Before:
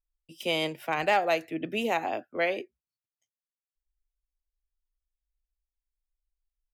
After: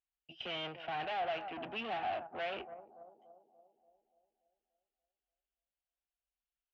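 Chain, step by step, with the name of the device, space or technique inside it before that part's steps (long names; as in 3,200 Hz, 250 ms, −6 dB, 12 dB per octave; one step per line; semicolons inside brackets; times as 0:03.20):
analogue delay pedal into a guitar amplifier (bucket-brigade delay 289 ms, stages 2,048, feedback 54%, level −21 dB; tube saturation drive 39 dB, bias 0.65; loudspeaker in its box 81–3,600 Hz, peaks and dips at 170 Hz −5 dB, 300 Hz −6 dB, 480 Hz −4 dB, 720 Hz +10 dB, 1,500 Hz +5 dB, 2,900 Hz +9 dB)
level −1 dB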